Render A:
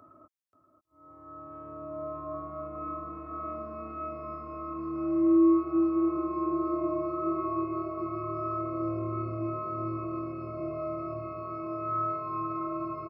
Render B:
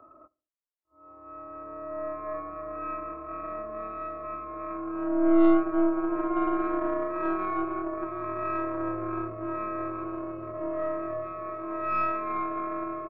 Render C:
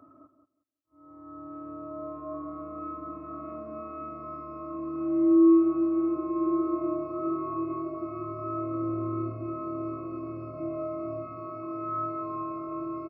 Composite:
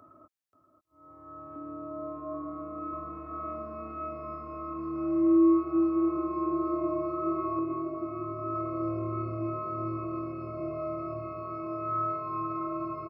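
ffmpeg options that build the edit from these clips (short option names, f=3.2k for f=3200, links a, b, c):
-filter_complex "[2:a]asplit=2[a][b];[0:a]asplit=3[c][d][e];[c]atrim=end=1.562[f];[a]atrim=start=1.558:end=2.932[g];[d]atrim=start=2.928:end=7.592[h];[b]atrim=start=7.588:end=8.552[i];[e]atrim=start=8.548[j];[f][g]acrossfade=d=0.004:c1=hsin:c2=hsin[k];[k][h]acrossfade=d=0.004:c1=hsin:c2=hsin[l];[l][i]acrossfade=d=0.004:c1=hsin:c2=hsin[m];[m][j]acrossfade=d=0.004:c1=hsin:c2=hsin"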